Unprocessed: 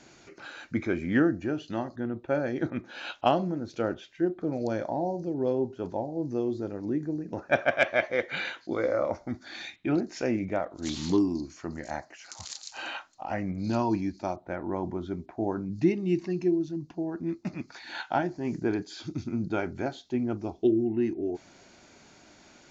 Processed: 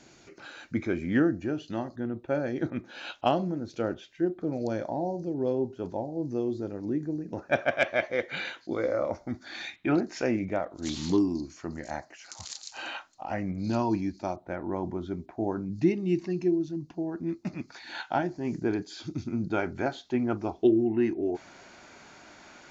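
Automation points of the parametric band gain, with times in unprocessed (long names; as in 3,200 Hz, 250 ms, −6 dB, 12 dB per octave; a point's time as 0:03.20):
parametric band 1,300 Hz 2.3 octaves
0:09.18 −2.5 dB
0:09.92 +6.5 dB
0:10.60 −1 dB
0:19.24 −1 dB
0:20.15 +8 dB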